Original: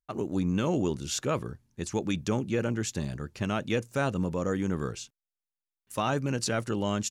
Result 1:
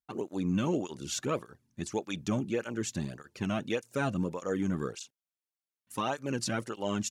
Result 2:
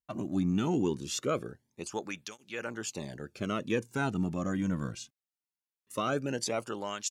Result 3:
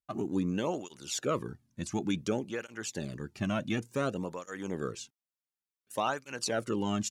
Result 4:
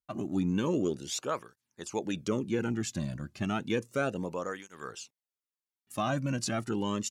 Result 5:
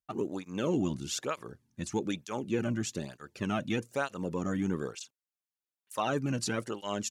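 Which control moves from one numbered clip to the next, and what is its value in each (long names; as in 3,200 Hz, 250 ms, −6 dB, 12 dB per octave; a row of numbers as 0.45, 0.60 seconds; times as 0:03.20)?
through-zero flanger with one copy inverted, nulls at: 1.7, 0.21, 0.56, 0.32, 1.1 Hertz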